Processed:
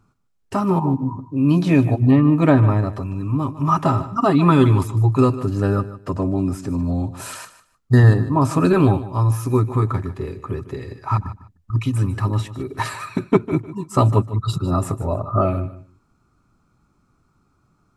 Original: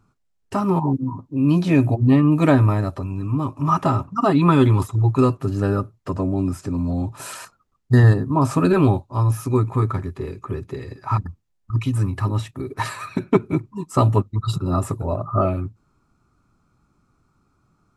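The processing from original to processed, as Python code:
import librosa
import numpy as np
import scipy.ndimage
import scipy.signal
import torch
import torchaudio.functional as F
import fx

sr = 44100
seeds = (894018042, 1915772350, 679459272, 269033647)

y = fx.high_shelf(x, sr, hz=4300.0, db=-10.5, at=(2.11, 2.93))
y = fx.echo_feedback(y, sr, ms=151, feedback_pct=20, wet_db=-15.0)
y = y * 10.0 ** (1.0 / 20.0)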